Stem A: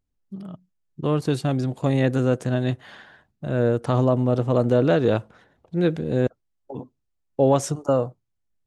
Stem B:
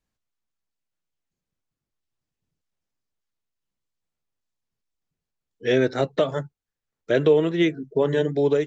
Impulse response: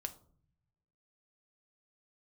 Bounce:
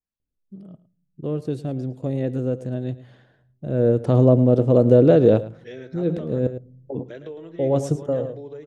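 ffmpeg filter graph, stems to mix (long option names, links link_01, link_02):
-filter_complex "[0:a]lowshelf=frequency=710:width_type=q:width=1.5:gain=8.5,adelay=200,volume=-6.5dB,afade=type=in:start_time=3.44:duration=0.73:silence=0.354813,asplit=3[link_01][link_02][link_03];[link_02]volume=-9dB[link_04];[link_03]volume=-15dB[link_05];[1:a]acompressor=threshold=-22dB:ratio=2,adynamicequalizer=threshold=0.00562:dfrequency=1800:dqfactor=0.7:tfrequency=1800:tqfactor=0.7:attack=5:release=100:ratio=0.375:range=4:mode=cutabove:tftype=highshelf,volume=-14.5dB,asplit=3[link_06][link_07][link_08];[link_07]volume=-10dB[link_09];[link_08]apad=whole_len=391078[link_10];[link_01][link_10]sidechaincompress=threshold=-52dB:ratio=8:attack=9.1:release=115[link_11];[2:a]atrim=start_sample=2205[link_12];[link_04][link_12]afir=irnorm=-1:irlink=0[link_13];[link_05][link_09]amix=inputs=2:normalize=0,aecho=0:1:109:1[link_14];[link_11][link_06][link_13][link_14]amix=inputs=4:normalize=0"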